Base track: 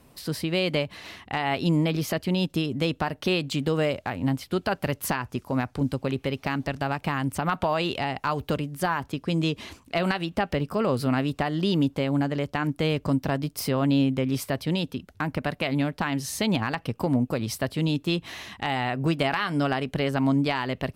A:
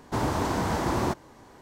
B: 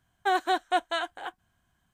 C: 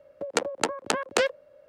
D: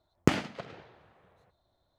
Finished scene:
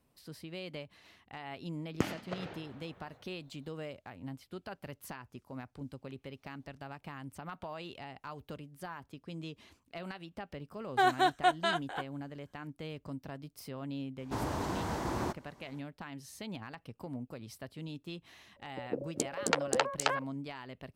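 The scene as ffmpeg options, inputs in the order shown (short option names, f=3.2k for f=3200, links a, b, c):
-filter_complex "[0:a]volume=-18dB[a];[4:a]dynaudnorm=f=130:g=3:m=16dB[b];[3:a]acrossover=split=470|5400[c][d][e];[e]adelay=270[f];[d]adelay=600[g];[c][g][f]amix=inputs=3:normalize=0[h];[b]atrim=end=1.98,asetpts=PTS-STARTPTS,volume=-12.5dB,afade=t=in:d=0.004:c=hsin,afade=t=out:st=1.976:d=0.004:c=hsin,adelay=1730[i];[2:a]atrim=end=1.93,asetpts=PTS-STARTPTS,volume=-1.5dB,afade=t=in:d=0.004:c=hsin,afade=t=out:st=1.926:d=0.004:c=hsin,adelay=10720[j];[1:a]atrim=end=1.61,asetpts=PTS-STARTPTS,volume=-8.5dB,afade=t=in:d=0.004:c=hsin,afade=t=out:st=1.606:d=0.004:c=hsin,adelay=14190[k];[h]atrim=end=1.68,asetpts=PTS-STARTPTS,volume=-1.5dB,afade=t=in:d=0.004:c=hsin,afade=t=out:st=1.676:d=0.004:c=hsin,adelay=18560[l];[a][i][j][k][l]amix=inputs=5:normalize=0"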